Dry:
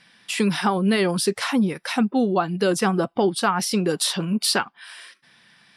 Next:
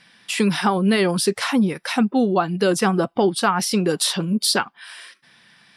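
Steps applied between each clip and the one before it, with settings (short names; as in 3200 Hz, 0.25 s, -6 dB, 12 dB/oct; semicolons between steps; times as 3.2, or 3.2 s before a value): spectral gain 4.22–4.57, 630–3100 Hz -10 dB; gain +2 dB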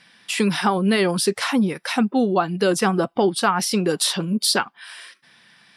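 low shelf 130 Hz -4.5 dB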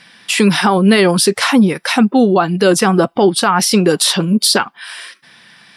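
maximiser +10 dB; gain -1 dB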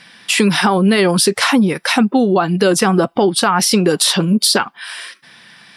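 compressor, threshold -10 dBFS, peak gain reduction 4.5 dB; gain +1 dB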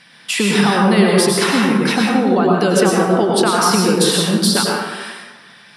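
plate-style reverb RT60 1.3 s, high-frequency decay 0.5×, pre-delay 85 ms, DRR -2 dB; gain -4.5 dB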